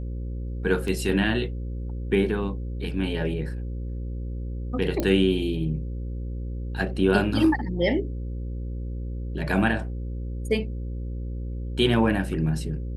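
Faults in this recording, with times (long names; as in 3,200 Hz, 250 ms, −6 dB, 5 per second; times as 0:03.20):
mains buzz 60 Hz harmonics 9 −31 dBFS
0:00.88: drop-out 2 ms
0:05.00: click −12 dBFS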